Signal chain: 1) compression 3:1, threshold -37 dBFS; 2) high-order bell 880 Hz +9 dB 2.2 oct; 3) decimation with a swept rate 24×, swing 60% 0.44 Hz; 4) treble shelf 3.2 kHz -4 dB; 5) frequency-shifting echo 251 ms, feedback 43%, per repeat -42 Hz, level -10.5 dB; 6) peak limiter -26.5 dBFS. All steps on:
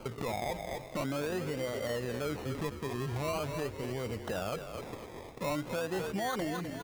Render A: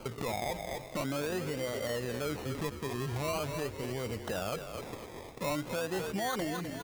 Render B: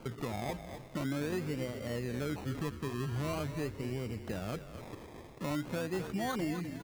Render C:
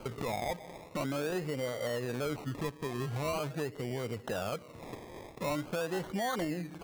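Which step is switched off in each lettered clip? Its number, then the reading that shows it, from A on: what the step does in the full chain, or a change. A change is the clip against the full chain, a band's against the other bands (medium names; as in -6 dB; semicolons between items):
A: 4, 8 kHz band +3.0 dB; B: 2, 125 Hz band +5.0 dB; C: 5, momentary loudness spread change +3 LU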